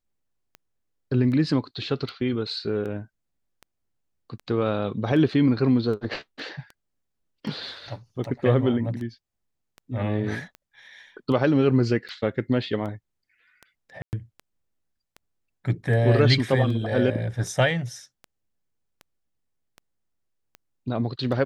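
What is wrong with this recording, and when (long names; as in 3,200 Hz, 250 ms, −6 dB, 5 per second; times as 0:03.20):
scratch tick 78 rpm −26 dBFS
0:14.02–0:14.13: drop-out 109 ms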